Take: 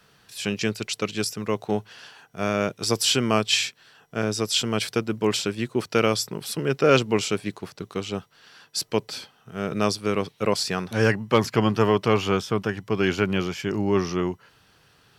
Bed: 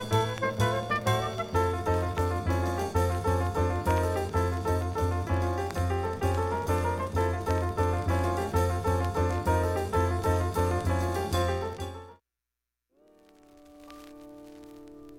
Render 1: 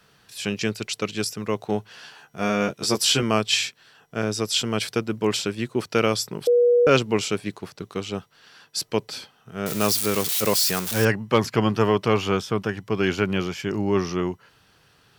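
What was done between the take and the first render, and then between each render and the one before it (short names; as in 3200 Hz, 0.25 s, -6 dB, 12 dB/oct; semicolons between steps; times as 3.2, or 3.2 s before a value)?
1.92–3.23 doubler 14 ms -3.5 dB; 6.47–6.87 bleep 483 Hz -13.5 dBFS; 9.66–11.05 switching spikes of -16 dBFS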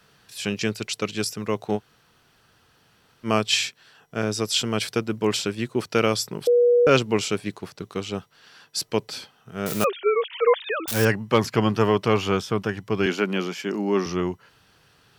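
1.78–3.26 room tone, crossfade 0.06 s; 9.84–10.88 sine-wave speech; 13.06–14.06 steep high-pass 180 Hz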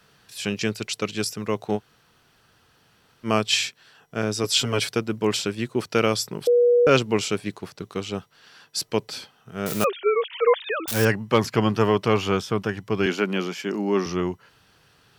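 4.43–4.89 comb 7.2 ms, depth 78%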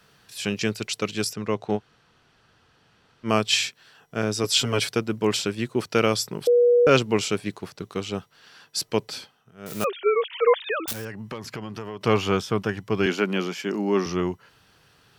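1.33–3.29 air absorption 64 m; 9.12–10.02 dip -17 dB, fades 0.45 s; 10.92–12.01 compressor, threshold -31 dBFS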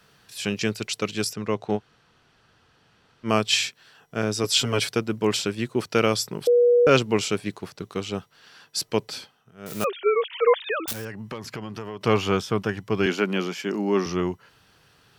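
nothing audible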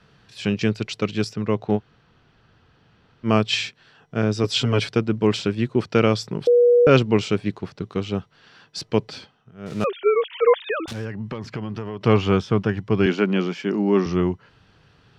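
LPF 4500 Hz 12 dB/oct; low shelf 310 Hz +8.5 dB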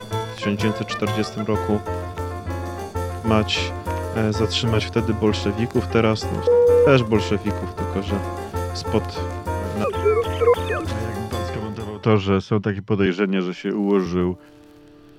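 add bed 0 dB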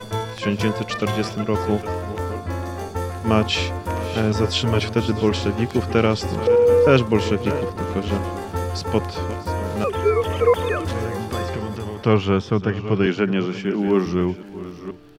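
reverse delay 0.481 s, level -13 dB; echo 0.643 s -19 dB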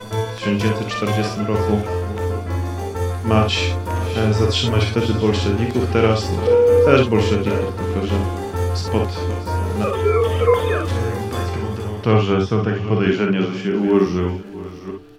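non-linear reverb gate 80 ms rising, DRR 2.5 dB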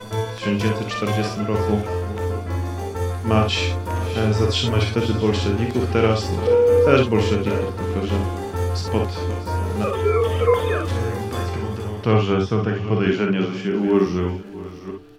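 gain -2 dB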